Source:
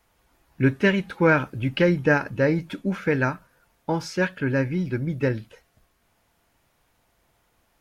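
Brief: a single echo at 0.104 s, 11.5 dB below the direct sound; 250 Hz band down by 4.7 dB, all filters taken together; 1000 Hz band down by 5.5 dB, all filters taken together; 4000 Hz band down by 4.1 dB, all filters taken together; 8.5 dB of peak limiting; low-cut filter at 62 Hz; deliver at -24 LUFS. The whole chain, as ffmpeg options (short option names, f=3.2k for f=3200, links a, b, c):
-af "highpass=62,equalizer=f=250:t=o:g=-6.5,equalizer=f=1k:t=o:g=-7,equalizer=f=4k:t=o:g=-6,alimiter=limit=-19.5dB:level=0:latency=1,aecho=1:1:104:0.266,volume=6dB"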